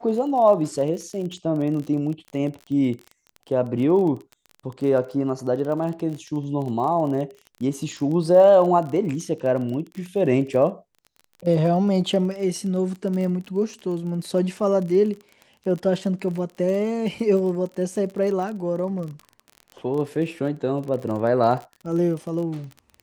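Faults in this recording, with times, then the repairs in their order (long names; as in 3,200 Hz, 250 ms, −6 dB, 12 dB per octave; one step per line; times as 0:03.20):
surface crackle 28 per second −30 dBFS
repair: click removal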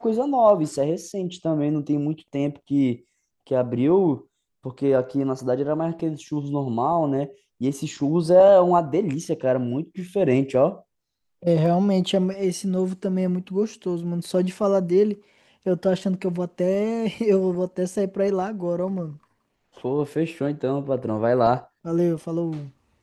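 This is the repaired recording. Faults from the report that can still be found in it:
none of them is left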